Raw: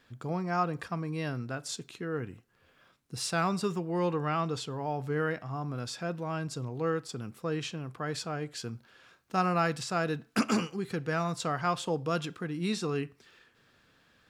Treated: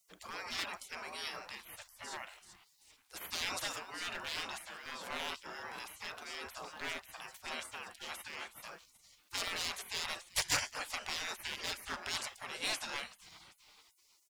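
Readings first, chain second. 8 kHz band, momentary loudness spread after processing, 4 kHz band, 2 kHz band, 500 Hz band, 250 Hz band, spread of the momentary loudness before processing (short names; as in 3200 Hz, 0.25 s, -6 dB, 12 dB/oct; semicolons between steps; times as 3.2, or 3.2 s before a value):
+0.5 dB, 12 LU, +2.5 dB, -2.0 dB, -16.5 dB, -22.5 dB, 8 LU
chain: frequency-shifting echo 0.386 s, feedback 48%, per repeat +120 Hz, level -21 dB; hard clip -24.5 dBFS, distortion -15 dB; spectral gate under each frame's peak -25 dB weak; gain +9.5 dB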